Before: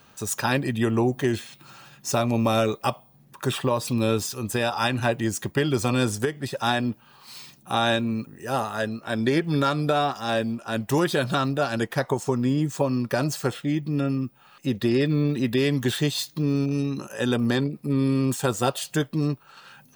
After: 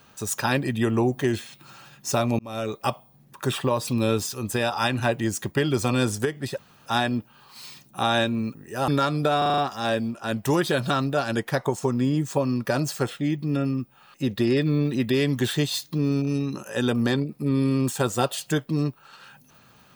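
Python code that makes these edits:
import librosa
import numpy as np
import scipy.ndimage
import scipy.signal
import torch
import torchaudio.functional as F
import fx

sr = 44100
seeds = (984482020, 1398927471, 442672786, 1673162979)

y = fx.edit(x, sr, fx.fade_in_span(start_s=2.39, length_s=0.52),
    fx.insert_room_tone(at_s=6.58, length_s=0.28),
    fx.cut(start_s=8.6, length_s=0.92),
    fx.stutter(start_s=10.02, slice_s=0.04, count=6), tone=tone)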